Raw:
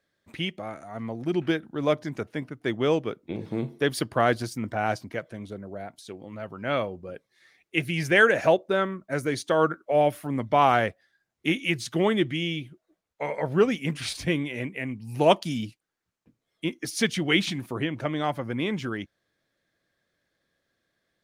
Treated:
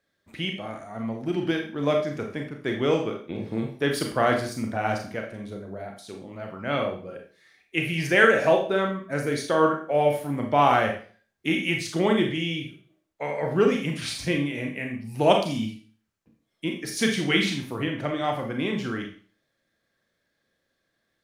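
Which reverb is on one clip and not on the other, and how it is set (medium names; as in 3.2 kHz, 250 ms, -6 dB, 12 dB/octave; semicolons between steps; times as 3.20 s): Schroeder reverb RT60 0.43 s, combs from 28 ms, DRR 2 dB; trim -1 dB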